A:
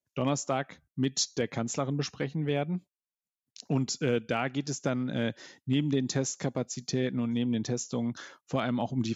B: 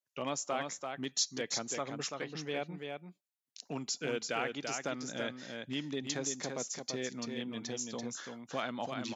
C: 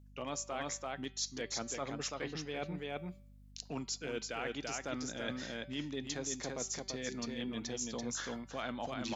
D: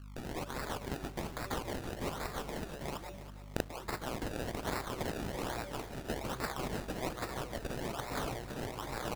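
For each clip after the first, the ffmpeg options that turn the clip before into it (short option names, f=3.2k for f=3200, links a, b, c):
-af "highpass=f=690:p=1,aecho=1:1:337:0.562,volume=-2.5dB"
-af "areverse,acompressor=threshold=-44dB:ratio=6,areverse,bandreject=f=192.1:t=h:w=4,bandreject=f=384.2:t=h:w=4,bandreject=f=576.3:t=h:w=4,bandreject=f=768.4:t=h:w=4,bandreject=f=960.5:t=h:w=4,bandreject=f=1.1526k:t=h:w=4,bandreject=f=1.3447k:t=h:w=4,bandreject=f=1.5368k:t=h:w=4,bandreject=f=1.7289k:t=h:w=4,bandreject=f=1.921k:t=h:w=4,bandreject=f=2.1131k:t=h:w=4,bandreject=f=2.3052k:t=h:w=4,bandreject=f=2.4973k:t=h:w=4,bandreject=f=2.6894k:t=h:w=4,bandreject=f=2.8815k:t=h:w=4,bandreject=f=3.0736k:t=h:w=4,bandreject=f=3.2657k:t=h:w=4,bandreject=f=3.4578k:t=h:w=4,bandreject=f=3.6499k:t=h:w=4,bandreject=f=3.842k:t=h:w=4,bandreject=f=4.0341k:t=h:w=4,bandreject=f=4.2262k:t=h:w=4,bandreject=f=4.4183k:t=h:w=4,bandreject=f=4.6104k:t=h:w=4,bandreject=f=4.8025k:t=h:w=4,bandreject=f=4.9946k:t=h:w=4,aeval=exprs='val(0)+0.000631*(sin(2*PI*50*n/s)+sin(2*PI*2*50*n/s)/2+sin(2*PI*3*50*n/s)/3+sin(2*PI*4*50*n/s)/4+sin(2*PI*5*50*n/s)/5)':c=same,volume=7.5dB"
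-af "afftfilt=real='re*lt(hypot(re,im),0.02)':imag='im*lt(hypot(re,im),0.02)':win_size=1024:overlap=0.75,acrusher=samples=28:mix=1:aa=0.000001:lfo=1:lforange=28:lforate=1.2,aecho=1:1:328|656|984|1312:0.224|0.0985|0.0433|0.0191,volume=9.5dB"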